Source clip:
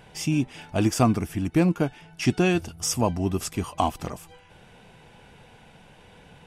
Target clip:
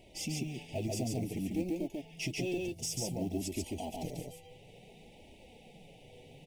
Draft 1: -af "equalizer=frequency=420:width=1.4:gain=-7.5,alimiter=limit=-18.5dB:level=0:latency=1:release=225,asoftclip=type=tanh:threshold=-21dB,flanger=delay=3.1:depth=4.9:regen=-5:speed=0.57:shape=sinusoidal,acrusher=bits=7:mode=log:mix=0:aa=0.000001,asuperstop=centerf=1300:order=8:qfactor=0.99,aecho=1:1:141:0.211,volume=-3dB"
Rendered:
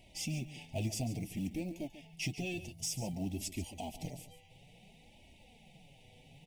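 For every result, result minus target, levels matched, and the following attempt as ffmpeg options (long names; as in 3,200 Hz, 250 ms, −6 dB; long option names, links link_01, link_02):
echo-to-direct −11.5 dB; 500 Hz band −4.5 dB
-af "equalizer=frequency=420:width=1.4:gain=-7.5,alimiter=limit=-18.5dB:level=0:latency=1:release=225,asoftclip=type=tanh:threshold=-21dB,flanger=delay=3.1:depth=4.9:regen=-5:speed=0.57:shape=sinusoidal,acrusher=bits=7:mode=log:mix=0:aa=0.000001,asuperstop=centerf=1300:order=8:qfactor=0.99,aecho=1:1:141:0.794,volume=-3dB"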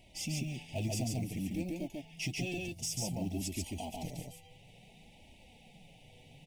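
500 Hz band −4.5 dB
-af "equalizer=frequency=420:width=1.4:gain=3.5,alimiter=limit=-18.5dB:level=0:latency=1:release=225,asoftclip=type=tanh:threshold=-21dB,flanger=delay=3.1:depth=4.9:regen=-5:speed=0.57:shape=sinusoidal,acrusher=bits=7:mode=log:mix=0:aa=0.000001,asuperstop=centerf=1300:order=8:qfactor=0.99,aecho=1:1:141:0.794,volume=-3dB"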